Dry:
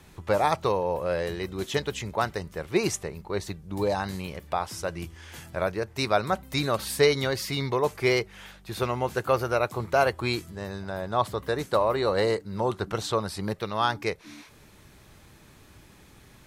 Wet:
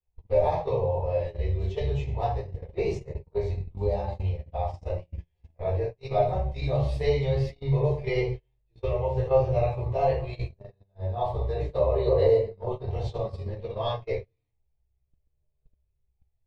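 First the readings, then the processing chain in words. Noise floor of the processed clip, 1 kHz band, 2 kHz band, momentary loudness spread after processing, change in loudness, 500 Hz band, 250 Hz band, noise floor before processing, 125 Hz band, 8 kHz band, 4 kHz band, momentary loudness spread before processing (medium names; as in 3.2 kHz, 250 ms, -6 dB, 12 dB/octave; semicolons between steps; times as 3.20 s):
-75 dBFS, -4.5 dB, -12.0 dB, 11 LU, -0.5 dB, +0.5 dB, -6.0 dB, -53 dBFS, +6.0 dB, under -20 dB, -12.0 dB, 11 LU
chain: low-pass 2.7 kHz 12 dB/octave; static phaser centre 590 Hz, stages 4; simulated room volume 89 m³, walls mixed, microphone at 1.8 m; chorus voices 6, 0.15 Hz, delay 14 ms, depth 1.3 ms; bass shelf 170 Hz +11.5 dB; gate -22 dBFS, range -34 dB; trim -7 dB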